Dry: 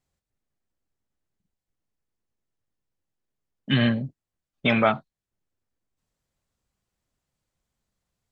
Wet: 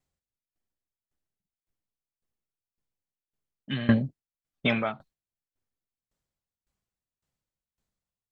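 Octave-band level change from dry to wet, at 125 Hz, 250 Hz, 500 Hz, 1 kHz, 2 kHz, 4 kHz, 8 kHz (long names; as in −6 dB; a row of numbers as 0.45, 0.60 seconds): −3.5 dB, −2.5 dB, −6.5 dB, −9.0 dB, −5.0 dB, −6.5 dB, can't be measured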